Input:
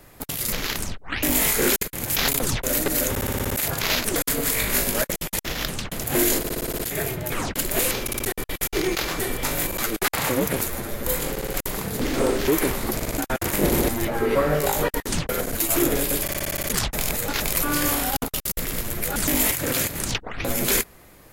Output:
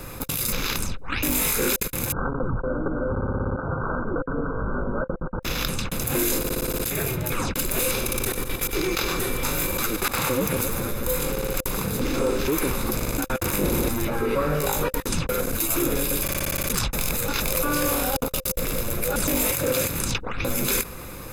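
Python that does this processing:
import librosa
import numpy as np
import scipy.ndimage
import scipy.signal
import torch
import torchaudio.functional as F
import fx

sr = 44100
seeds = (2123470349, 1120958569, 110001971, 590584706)

y = fx.brickwall_lowpass(x, sr, high_hz=1600.0, at=(2.12, 5.43))
y = fx.echo_split(y, sr, split_hz=1100.0, low_ms=268, high_ms=97, feedback_pct=52, wet_db=-12, at=(7.8, 10.91), fade=0.02)
y = fx.peak_eq(y, sr, hz=560.0, db=8.0, octaves=0.77, at=(17.46, 19.86))
y = fx.peak_eq(y, sr, hz=520.0, db=10.5, octaves=0.2)
y = y + 0.49 * np.pad(y, (int(0.8 * sr / 1000.0), 0))[:len(y)]
y = fx.env_flatten(y, sr, amount_pct=50)
y = y * librosa.db_to_amplitude(-5.5)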